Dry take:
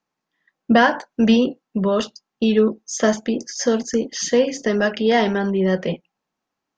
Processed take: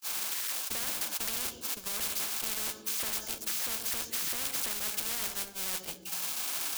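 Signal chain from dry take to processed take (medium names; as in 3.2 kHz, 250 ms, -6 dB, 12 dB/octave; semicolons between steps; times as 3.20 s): zero-crossing glitches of -9 dBFS; de-hum 58.52 Hz, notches 3; peak limiter -14 dBFS, peak gain reduction 11 dB; band-stop 1.9 kHz, Q 8.2; gate -22 dBFS, range -56 dB; bass shelf 150 Hz +10.5 dB; on a send at -21 dB: reverberation RT60 0.60 s, pre-delay 60 ms; on the sum: spectrum-flattening compressor 10:1; trim -2.5 dB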